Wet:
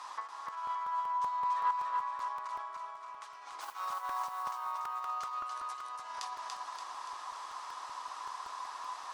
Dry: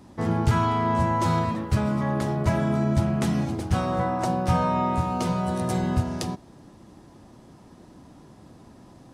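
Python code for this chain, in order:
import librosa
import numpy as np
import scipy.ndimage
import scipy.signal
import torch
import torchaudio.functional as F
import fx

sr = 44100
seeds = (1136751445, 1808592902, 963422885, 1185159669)

p1 = fx.octave_divider(x, sr, octaves=1, level_db=0.0)
p2 = scipy.signal.sosfilt(scipy.signal.butter(2, 5700.0, 'lowpass', fs=sr, output='sos'), p1)
p3 = fx.high_shelf(p2, sr, hz=4200.0, db=12.0)
p4 = fx.over_compress(p3, sr, threshold_db=-35.0, ratio=-1.0)
p5 = fx.mod_noise(p4, sr, seeds[0], snr_db=19, at=(3.6, 4.42), fade=0.02)
p6 = fx.ladder_highpass(p5, sr, hz=1000.0, resonance_pct=75)
p7 = p6 + fx.echo_feedback(p6, sr, ms=287, feedback_pct=53, wet_db=-3, dry=0)
p8 = fx.buffer_crackle(p7, sr, first_s=0.48, period_s=0.19, block=128, kind='repeat')
y = p8 * librosa.db_to_amplitude(5.0)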